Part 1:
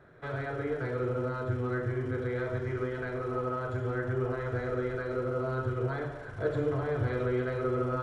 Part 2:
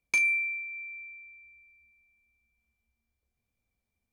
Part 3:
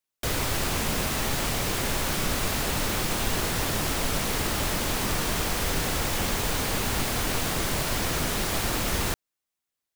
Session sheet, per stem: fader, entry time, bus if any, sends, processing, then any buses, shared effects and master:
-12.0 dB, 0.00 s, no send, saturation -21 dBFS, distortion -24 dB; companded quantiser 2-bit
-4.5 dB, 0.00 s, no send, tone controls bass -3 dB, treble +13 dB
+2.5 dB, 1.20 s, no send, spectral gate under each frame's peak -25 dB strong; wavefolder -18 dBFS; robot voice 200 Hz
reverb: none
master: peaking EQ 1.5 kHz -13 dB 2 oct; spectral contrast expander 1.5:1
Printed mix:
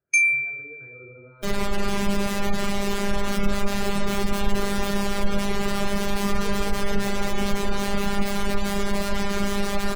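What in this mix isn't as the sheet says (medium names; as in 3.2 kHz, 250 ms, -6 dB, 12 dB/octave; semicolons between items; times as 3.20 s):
stem 1: missing companded quantiser 2-bit; master: missing peaking EQ 1.5 kHz -13 dB 2 oct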